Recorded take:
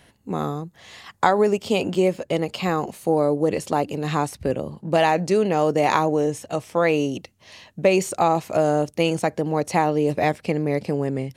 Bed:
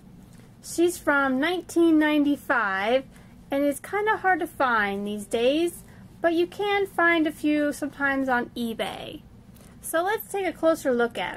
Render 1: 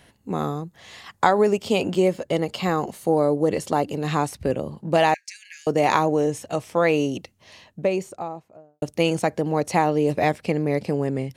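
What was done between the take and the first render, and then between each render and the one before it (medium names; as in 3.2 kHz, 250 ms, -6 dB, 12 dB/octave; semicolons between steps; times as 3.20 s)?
2.00–3.99 s: band-stop 2.5 kHz; 5.14–5.67 s: rippled Chebyshev high-pass 1.6 kHz, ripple 9 dB; 7.17–8.82 s: studio fade out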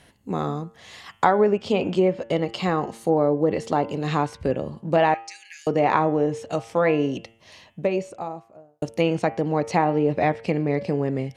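low-pass that closes with the level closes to 2.3 kHz, closed at -15.5 dBFS; de-hum 113.7 Hz, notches 31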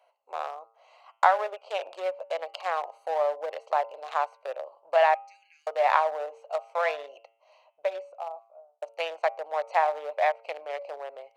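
local Wiener filter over 25 samples; elliptic high-pass 600 Hz, stop band 60 dB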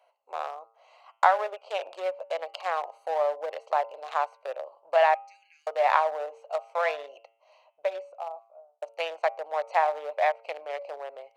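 no audible change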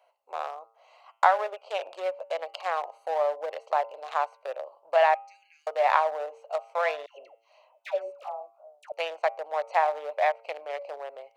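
7.06–8.92 s: phase dispersion lows, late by 139 ms, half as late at 720 Hz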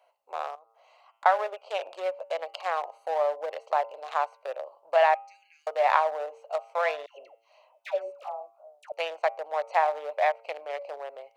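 0.55–1.26 s: compression 2.5:1, threshold -56 dBFS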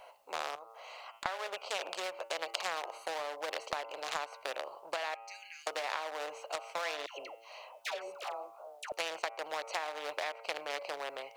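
compression 12:1, threshold -29 dBFS, peak gain reduction 14.5 dB; spectrum-flattening compressor 2:1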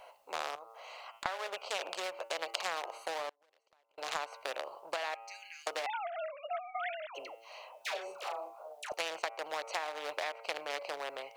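3.29–3.98 s: inverted gate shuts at -36 dBFS, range -34 dB; 5.86–7.15 s: formants replaced by sine waves; 7.77–8.94 s: doubling 34 ms -6 dB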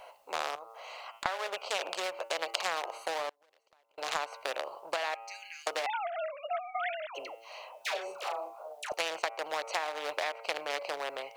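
trim +3.5 dB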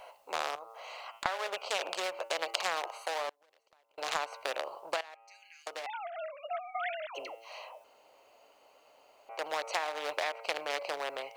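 2.87–3.27 s: high-pass 800 Hz -> 290 Hz; 5.01–7.20 s: fade in, from -18 dB; 7.84–9.29 s: room tone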